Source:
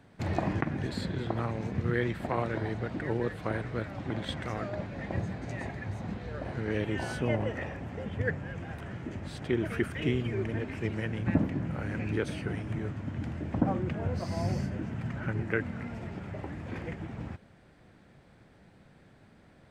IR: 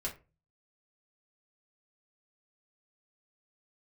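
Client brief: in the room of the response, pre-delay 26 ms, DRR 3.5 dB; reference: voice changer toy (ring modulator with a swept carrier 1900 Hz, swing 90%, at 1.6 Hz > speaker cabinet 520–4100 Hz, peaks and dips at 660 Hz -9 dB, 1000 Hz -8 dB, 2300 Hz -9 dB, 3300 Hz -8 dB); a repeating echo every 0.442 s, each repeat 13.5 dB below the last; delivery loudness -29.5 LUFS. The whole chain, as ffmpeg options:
-filter_complex "[0:a]aecho=1:1:442|884:0.211|0.0444,asplit=2[a][b];[1:a]atrim=start_sample=2205,adelay=26[c];[b][c]afir=irnorm=-1:irlink=0,volume=-5dB[d];[a][d]amix=inputs=2:normalize=0,aeval=exprs='val(0)*sin(2*PI*1900*n/s+1900*0.9/1.6*sin(2*PI*1.6*n/s))':c=same,highpass=520,equalizer=f=660:t=q:w=4:g=-9,equalizer=f=1k:t=q:w=4:g=-8,equalizer=f=2.3k:t=q:w=4:g=-9,equalizer=f=3.3k:t=q:w=4:g=-8,lowpass=f=4.1k:w=0.5412,lowpass=f=4.1k:w=1.3066,volume=8dB"

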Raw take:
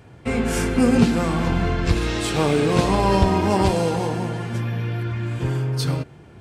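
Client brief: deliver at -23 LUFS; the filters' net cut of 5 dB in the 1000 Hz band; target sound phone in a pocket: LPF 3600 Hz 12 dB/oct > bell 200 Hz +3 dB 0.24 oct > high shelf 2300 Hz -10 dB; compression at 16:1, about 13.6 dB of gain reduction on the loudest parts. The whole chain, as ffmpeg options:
-af "equalizer=f=1k:t=o:g=-4.5,acompressor=threshold=-25dB:ratio=16,lowpass=3.6k,equalizer=f=200:t=o:w=0.24:g=3,highshelf=f=2.3k:g=-10,volume=7dB"

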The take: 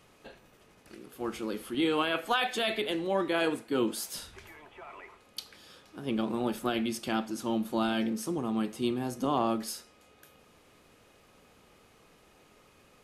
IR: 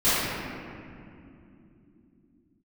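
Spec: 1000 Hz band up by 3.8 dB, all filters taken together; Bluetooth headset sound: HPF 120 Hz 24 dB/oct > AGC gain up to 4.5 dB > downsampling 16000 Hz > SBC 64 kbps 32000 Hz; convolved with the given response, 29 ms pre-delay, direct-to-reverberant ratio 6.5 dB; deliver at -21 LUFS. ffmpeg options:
-filter_complex "[0:a]equalizer=f=1k:t=o:g=5,asplit=2[a][b];[1:a]atrim=start_sample=2205,adelay=29[c];[b][c]afir=irnorm=-1:irlink=0,volume=-24.5dB[d];[a][d]amix=inputs=2:normalize=0,highpass=f=120:w=0.5412,highpass=f=120:w=1.3066,dynaudnorm=m=4.5dB,aresample=16000,aresample=44100,volume=8dB" -ar 32000 -c:a sbc -b:a 64k

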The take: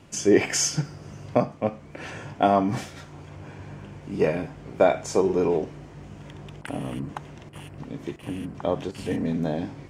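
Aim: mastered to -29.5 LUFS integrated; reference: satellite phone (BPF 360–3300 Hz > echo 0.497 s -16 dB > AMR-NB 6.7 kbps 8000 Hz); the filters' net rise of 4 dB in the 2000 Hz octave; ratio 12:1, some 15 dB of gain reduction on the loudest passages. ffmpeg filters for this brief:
-af "equalizer=f=2k:t=o:g=5.5,acompressor=threshold=-28dB:ratio=12,highpass=360,lowpass=3.3k,aecho=1:1:497:0.158,volume=11dB" -ar 8000 -c:a libopencore_amrnb -b:a 6700

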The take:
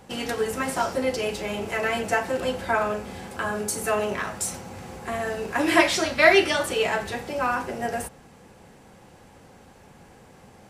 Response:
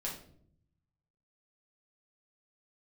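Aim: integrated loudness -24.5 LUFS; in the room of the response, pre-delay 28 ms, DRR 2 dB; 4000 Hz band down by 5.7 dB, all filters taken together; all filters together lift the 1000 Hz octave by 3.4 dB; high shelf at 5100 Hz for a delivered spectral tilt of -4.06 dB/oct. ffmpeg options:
-filter_complex "[0:a]equalizer=f=1k:t=o:g=5,equalizer=f=4k:t=o:g=-7,highshelf=f=5.1k:g=-3.5,asplit=2[a][b];[1:a]atrim=start_sample=2205,adelay=28[c];[b][c]afir=irnorm=-1:irlink=0,volume=-3dB[d];[a][d]amix=inputs=2:normalize=0,volume=-3dB"

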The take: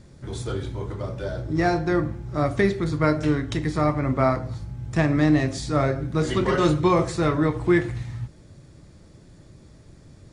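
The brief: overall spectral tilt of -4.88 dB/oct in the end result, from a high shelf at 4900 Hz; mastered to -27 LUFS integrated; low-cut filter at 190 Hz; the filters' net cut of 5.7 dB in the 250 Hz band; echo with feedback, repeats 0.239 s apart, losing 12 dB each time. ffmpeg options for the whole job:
-af "highpass=190,equalizer=f=250:t=o:g=-7,highshelf=f=4.9k:g=7,aecho=1:1:239|478|717:0.251|0.0628|0.0157,volume=-0.5dB"

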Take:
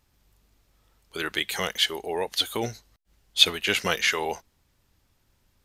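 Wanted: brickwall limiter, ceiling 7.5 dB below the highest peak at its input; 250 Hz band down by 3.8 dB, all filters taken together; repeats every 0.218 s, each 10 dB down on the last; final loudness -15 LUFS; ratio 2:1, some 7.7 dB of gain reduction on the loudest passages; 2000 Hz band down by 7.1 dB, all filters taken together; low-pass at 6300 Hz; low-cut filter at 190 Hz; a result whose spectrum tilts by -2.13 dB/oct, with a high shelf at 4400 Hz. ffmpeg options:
-af "highpass=190,lowpass=6.3k,equalizer=f=250:t=o:g=-4,equalizer=f=2k:t=o:g=-8,highshelf=f=4.4k:g=-4.5,acompressor=threshold=-31dB:ratio=2,alimiter=limit=-22dB:level=0:latency=1,aecho=1:1:218|436|654|872:0.316|0.101|0.0324|0.0104,volume=20.5dB"

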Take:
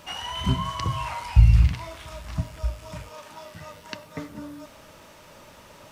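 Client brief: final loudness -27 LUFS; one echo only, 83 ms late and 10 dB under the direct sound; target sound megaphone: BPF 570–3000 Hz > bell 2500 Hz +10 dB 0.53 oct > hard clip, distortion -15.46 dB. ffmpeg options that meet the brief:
-af "highpass=570,lowpass=3k,equalizer=f=2.5k:t=o:w=0.53:g=10,aecho=1:1:83:0.316,asoftclip=type=hard:threshold=-27dB,volume=8dB"

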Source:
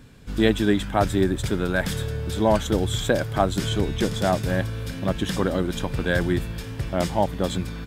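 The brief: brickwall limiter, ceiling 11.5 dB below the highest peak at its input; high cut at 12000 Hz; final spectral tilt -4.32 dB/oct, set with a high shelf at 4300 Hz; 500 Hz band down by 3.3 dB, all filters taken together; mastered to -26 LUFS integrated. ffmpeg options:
-af "lowpass=12k,equalizer=f=500:t=o:g=-4.5,highshelf=f=4.3k:g=9,volume=2dB,alimiter=limit=-14.5dB:level=0:latency=1"

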